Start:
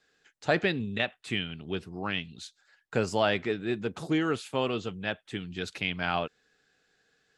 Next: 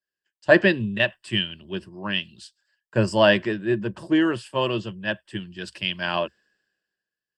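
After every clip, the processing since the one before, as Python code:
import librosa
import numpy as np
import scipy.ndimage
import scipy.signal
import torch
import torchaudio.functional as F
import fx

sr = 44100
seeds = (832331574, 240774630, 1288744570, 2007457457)

y = fx.ripple_eq(x, sr, per_octave=1.3, db=11)
y = fx.band_widen(y, sr, depth_pct=70)
y = y * 10.0 ** (3.5 / 20.0)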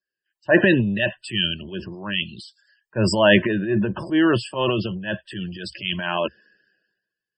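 y = fx.transient(x, sr, attack_db=-7, sustain_db=9)
y = fx.spec_topn(y, sr, count=64)
y = y * 10.0 ** (2.5 / 20.0)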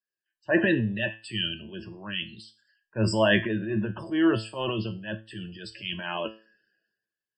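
y = fx.comb_fb(x, sr, f0_hz=110.0, decay_s=0.34, harmonics='all', damping=0.0, mix_pct=70)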